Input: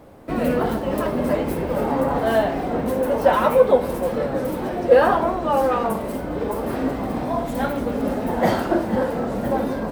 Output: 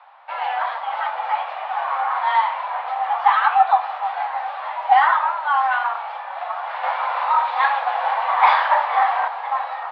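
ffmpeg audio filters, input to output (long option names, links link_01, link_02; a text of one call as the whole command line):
ffmpeg -i in.wav -filter_complex "[0:a]asettb=1/sr,asplit=3[link_01][link_02][link_03];[link_01]atrim=end=6.834[link_04];[link_02]atrim=start=6.83:end=9.28,asetpts=PTS-STARTPTS,afade=type=in:duration=0.004:curve=qsin,afade=type=out:start_time=2.446:duration=0.004:curve=qsin,acontrast=63[link_05];[link_03]atrim=start=9.276[link_06];[link_04][link_05]acrossfade=duration=0.004:curve1=hsin:curve2=qsin[link_07];[link_07][link_06]acrossfade=duration=0.004:curve1=qsin:curve2=hsin,highpass=frequency=510:width_type=q:width=0.5412,highpass=frequency=510:width_type=q:width=1.307,lowpass=frequency=3600:width_type=q:width=0.5176,lowpass=frequency=3600:width_type=q:width=0.7071,lowpass=frequency=3600:width_type=q:width=1.932,afreqshift=260,volume=2dB" out.wav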